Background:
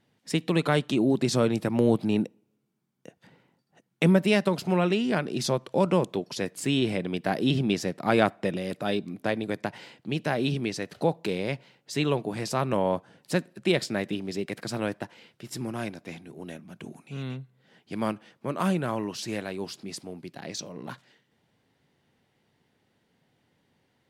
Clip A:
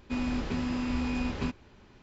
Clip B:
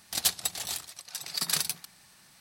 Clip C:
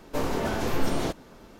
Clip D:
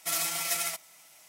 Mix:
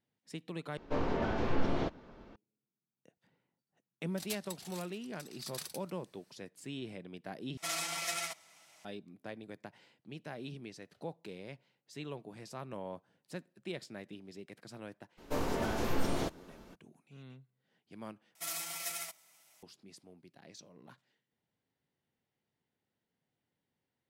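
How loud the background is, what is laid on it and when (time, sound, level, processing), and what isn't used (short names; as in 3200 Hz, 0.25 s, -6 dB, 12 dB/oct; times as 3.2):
background -17.5 dB
0.77 replace with C -4.5 dB + air absorption 210 m
4.05 add B -16 dB, fades 0.10 s
7.57 replace with D -2.5 dB + air absorption 54 m
15.17 add C -6 dB, fades 0.02 s
18.35 replace with D -9.5 dB
not used: A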